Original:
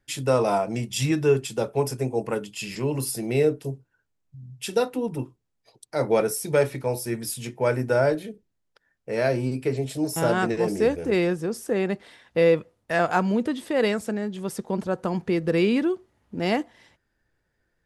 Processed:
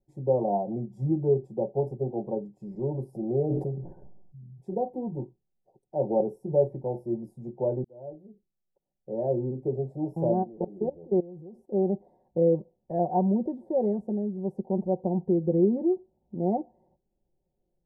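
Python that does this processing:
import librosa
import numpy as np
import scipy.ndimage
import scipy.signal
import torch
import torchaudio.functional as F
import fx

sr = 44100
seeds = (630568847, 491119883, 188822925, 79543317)

y = fx.sustainer(x, sr, db_per_s=42.0, at=(3.11, 4.79), fade=0.02)
y = fx.level_steps(y, sr, step_db=21, at=(10.42, 11.72), fade=0.02)
y = fx.edit(y, sr, fx.fade_in_span(start_s=7.84, length_s=1.52), tone=tone)
y = scipy.signal.sosfilt(scipy.signal.ellip(4, 1.0, 40, 820.0, 'lowpass', fs=sr, output='sos'), y)
y = y + 0.73 * np.pad(y, (int(5.4 * sr / 1000.0), 0))[:len(y)]
y = y * 10.0 ** (-4.0 / 20.0)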